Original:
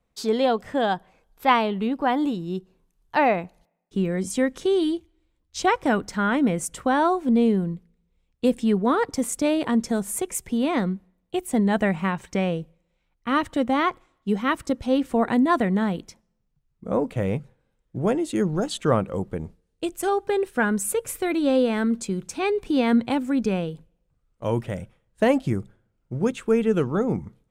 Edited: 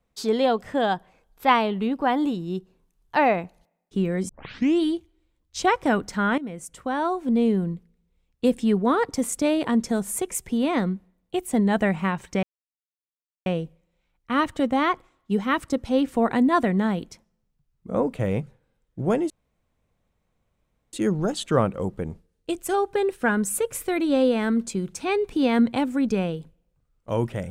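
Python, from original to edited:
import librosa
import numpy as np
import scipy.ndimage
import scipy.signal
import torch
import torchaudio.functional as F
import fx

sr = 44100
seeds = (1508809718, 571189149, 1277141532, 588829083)

y = fx.edit(x, sr, fx.tape_start(start_s=4.29, length_s=0.52),
    fx.fade_in_from(start_s=6.38, length_s=1.29, floor_db=-15.0),
    fx.insert_silence(at_s=12.43, length_s=1.03),
    fx.insert_room_tone(at_s=18.27, length_s=1.63), tone=tone)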